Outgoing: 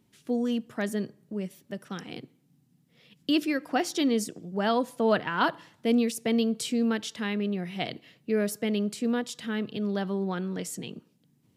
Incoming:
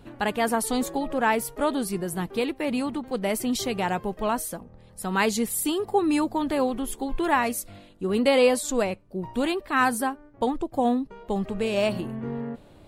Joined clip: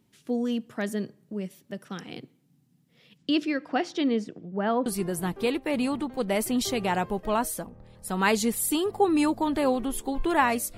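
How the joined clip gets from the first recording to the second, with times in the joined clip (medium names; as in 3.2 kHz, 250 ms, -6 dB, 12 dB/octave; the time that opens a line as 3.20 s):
outgoing
3.17–4.86 s: low-pass 7.5 kHz -> 1.6 kHz
4.86 s: go over to incoming from 1.80 s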